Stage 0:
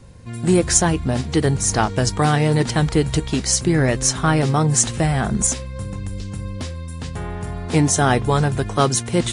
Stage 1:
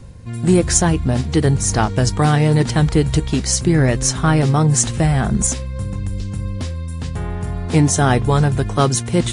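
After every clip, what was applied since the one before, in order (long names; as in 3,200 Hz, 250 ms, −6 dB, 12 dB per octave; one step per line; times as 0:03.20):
low-shelf EQ 200 Hz +6 dB
reversed playback
upward compression, threshold −30 dBFS
reversed playback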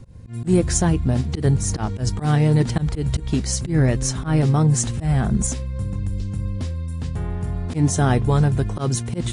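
low-shelf EQ 440 Hz +6 dB
volume swells 109 ms
level −7 dB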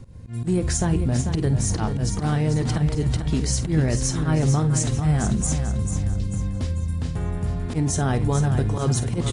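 brickwall limiter −14 dBFS, peak gain reduction 7.5 dB
double-tracking delay 50 ms −14 dB
repeating echo 443 ms, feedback 39%, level −8 dB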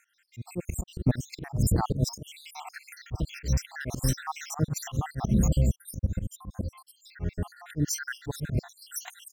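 time-frequency cells dropped at random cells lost 75%
volume swells 118 ms
linearly interpolated sample-rate reduction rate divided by 2×
level +2.5 dB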